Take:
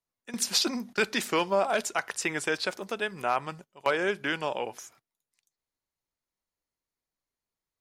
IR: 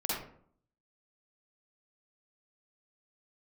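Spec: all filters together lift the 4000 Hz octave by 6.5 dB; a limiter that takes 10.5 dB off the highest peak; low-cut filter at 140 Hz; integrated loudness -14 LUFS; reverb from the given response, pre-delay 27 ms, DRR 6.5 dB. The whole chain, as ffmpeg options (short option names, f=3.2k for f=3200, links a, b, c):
-filter_complex "[0:a]highpass=140,equalizer=f=4k:t=o:g=8,alimiter=limit=-17dB:level=0:latency=1,asplit=2[a][b];[1:a]atrim=start_sample=2205,adelay=27[c];[b][c]afir=irnorm=-1:irlink=0,volume=-12.5dB[d];[a][d]amix=inputs=2:normalize=0,volume=15dB"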